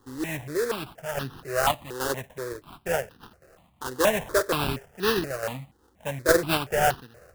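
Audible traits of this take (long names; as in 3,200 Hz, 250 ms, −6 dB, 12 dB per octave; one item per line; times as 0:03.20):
sample-and-hold tremolo
aliases and images of a low sample rate 2,200 Hz, jitter 20%
notches that jump at a steady rate 4.2 Hz 640–2,200 Hz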